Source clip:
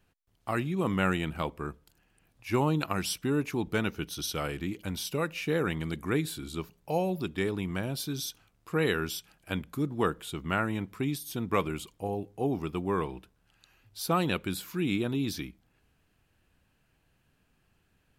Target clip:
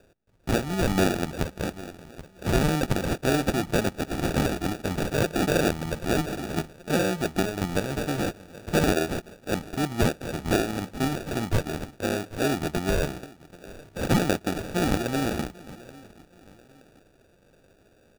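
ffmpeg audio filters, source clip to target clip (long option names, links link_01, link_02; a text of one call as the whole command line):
ffmpeg -i in.wav -filter_complex "[0:a]equalizer=frequency=2000:width_type=o:width=2.5:gain=14,aecho=1:1:782|1564:0.0631|0.0246,asplit=2[link_01][link_02];[link_02]acompressor=threshold=-32dB:ratio=6,volume=-3dB[link_03];[link_01][link_03]amix=inputs=2:normalize=0,acrusher=samples=42:mix=1:aa=0.000001,alimiter=limit=-12.5dB:level=0:latency=1:release=318" out.wav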